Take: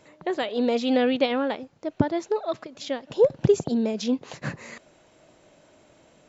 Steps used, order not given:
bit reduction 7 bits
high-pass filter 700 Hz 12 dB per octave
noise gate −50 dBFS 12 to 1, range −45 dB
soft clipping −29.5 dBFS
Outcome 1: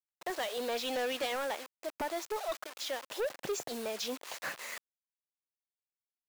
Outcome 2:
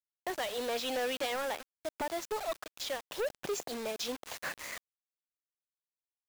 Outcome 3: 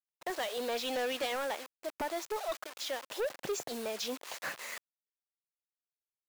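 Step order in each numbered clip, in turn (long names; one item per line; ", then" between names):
bit reduction, then noise gate, then high-pass filter, then soft clipping
high-pass filter, then noise gate, then soft clipping, then bit reduction
bit reduction, then high-pass filter, then noise gate, then soft clipping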